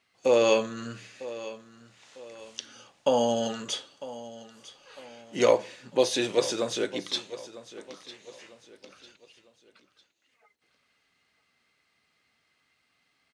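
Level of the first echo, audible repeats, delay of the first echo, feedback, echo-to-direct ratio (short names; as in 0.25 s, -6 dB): -16.0 dB, 3, 0.951 s, 38%, -15.5 dB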